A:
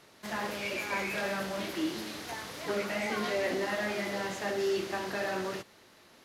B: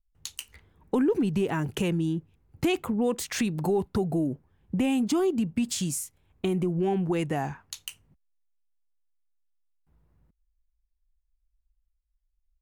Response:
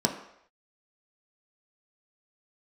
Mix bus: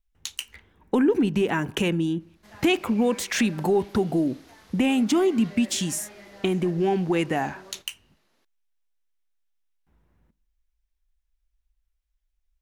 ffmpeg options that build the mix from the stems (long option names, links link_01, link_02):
-filter_complex "[0:a]adelay=2200,volume=-13dB[link_01];[1:a]equalizer=frequency=2300:width=0.58:gain=6.5,volume=0.5dB,asplit=2[link_02][link_03];[link_03]volume=-23.5dB[link_04];[2:a]atrim=start_sample=2205[link_05];[link_04][link_05]afir=irnorm=-1:irlink=0[link_06];[link_01][link_02][link_06]amix=inputs=3:normalize=0"